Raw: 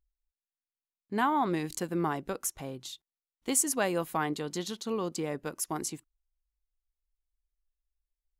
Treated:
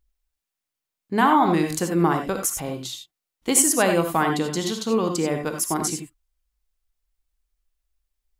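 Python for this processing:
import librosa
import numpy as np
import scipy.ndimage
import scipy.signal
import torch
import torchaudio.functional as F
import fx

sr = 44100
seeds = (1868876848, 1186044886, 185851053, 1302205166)

y = fx.rev_gated(x, sr, seeds[0], gate_ms=110, shape='rising', drr_db=4.5)
y = F.gain(torch.from_numpy(y), 8.5).numpy()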